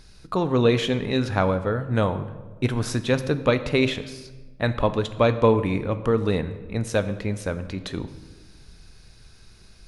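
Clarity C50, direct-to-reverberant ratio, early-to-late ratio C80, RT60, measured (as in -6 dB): 13.0 dB, 10.5 dB, 14.5 dB, 1.3 s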